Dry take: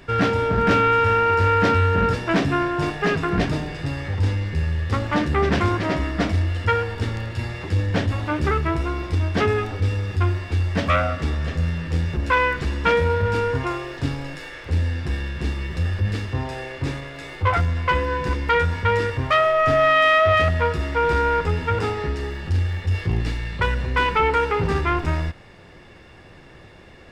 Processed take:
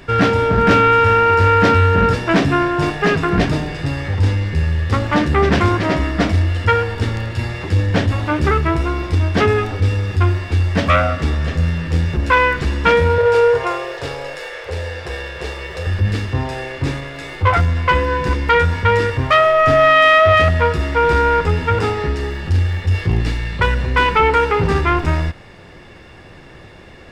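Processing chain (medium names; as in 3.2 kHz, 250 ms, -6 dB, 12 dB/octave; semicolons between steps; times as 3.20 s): 13.18–15.87 s: resonant low shelf 350 Hz -10.5 dB, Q 3; trim +5.5 dB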